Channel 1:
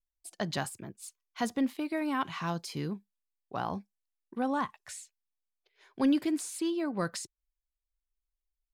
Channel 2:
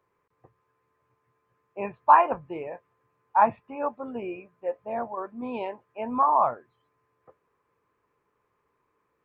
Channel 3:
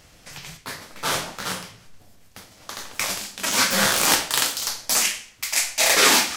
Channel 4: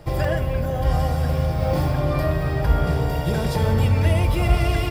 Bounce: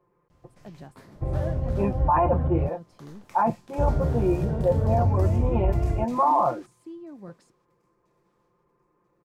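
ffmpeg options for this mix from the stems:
-filter_complex "[0:a]adelay=250,volume=0.141[s0];[1:a]aecho=1:1:5.7:0.93,volume=0.841[s1];[2:a]acompressor=threshold=0.0398:ratio=6,adelay=300,volume=0.15,asplit=2[s2][s3];[s3]volume=0.0708[s4];[3:a]lowpass=2100,adelay=1150,volume=0.237,asplit=3[s5][s6][s7];[s5]atrim=end=2.69,asetpts=PTS-STARTPTS,afade=t=out:st=2.686:d=0.004:c=hsin[s8];[s6]atrim=start=2.69:end=3.78,asetpts=PTS-STARTPTS,volume=0[s9];[s7]atrim=start=3.78,asetpts=PTS-STARTPTS,afade=t=in:d=0.004:c=hsin[s10];[s8][s9][s10]concat=n=3:v=0:a=1[s11];[s4]aecho=0:1:988|1976|2964|3952|4940:1|0.38|0.144|0.0549|0.0209[s12];[s0][s1][s2][s11][s12]amix=inputs=5:normalize=0,tiltshelf=f=1100:g=9.5,alimiter=limit=0.224:level=0:latency=1:release=13"

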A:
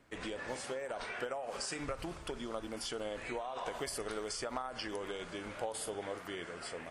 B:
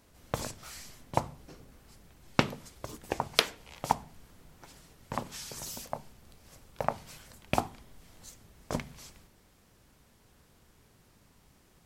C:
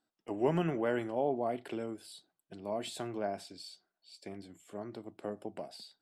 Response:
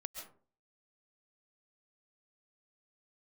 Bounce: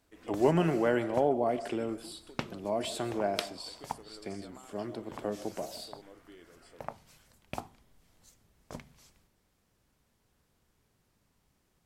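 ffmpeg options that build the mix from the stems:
-filter_complex "[0:a]equalizer=f=300:t=o:w=0.77:g=9,volume=0.168[s0];[1:a]volume=0.299[s1];[2:a]volume=1.26,asplit=2[s2][s3];[s3]volume=0.562[s4];[3:a]atrim=start_sample=2205[s5];[s4][s5]afir=irnorm=-1:irlink=0[s6];[s0][s1][s2][s6]amix=inputs=4:normalize=0"

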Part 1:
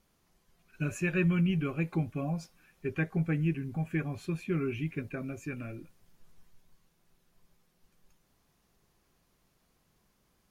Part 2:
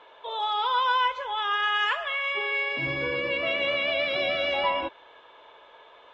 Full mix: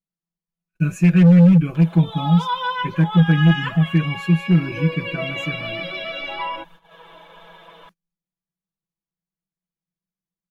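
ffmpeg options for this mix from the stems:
-filter_complex "[0:a]equalizer=f=180:t=o:w=0.39:g=14,volume=6.31,asoftclip=hard,volume=0.158,volume=1.33[s0];[1:a]flanger=delay=0.6:depth=7.2:regen=41:speed=0.4:shape=triangular,acompressor=mode=upward:threshold=0.0126:ratio=2.5,adelay=1750,volume=0.944[s1];[s0][s1]amix=inputs=2:normalize=0,agate=range=0.0224:threshold=0.00316:ratio=16:detection=peak,aecho=1:1:6.1:0.96"

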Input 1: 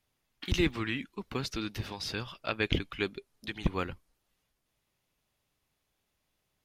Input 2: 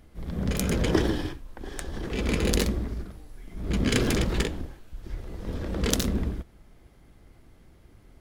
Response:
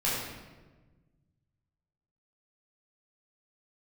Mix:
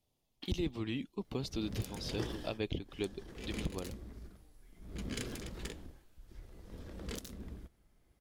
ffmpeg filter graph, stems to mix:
-filter_complex "[0:a]firequalizer=gain_entry='entry(680,0);entry(1500,-16);entry(3200,-4)':delay=0.05:min_phase=1,volume=1.06[s0];[1:a]highshelf=f=4500:g=7,adelay=1250,volume=0.158[s1];[s0][s1]amix=inputs=2:normalize=0,alimiter=level_in=1.06:limit=0.0631:level=0:latency=1:release=449,volume=0.944"

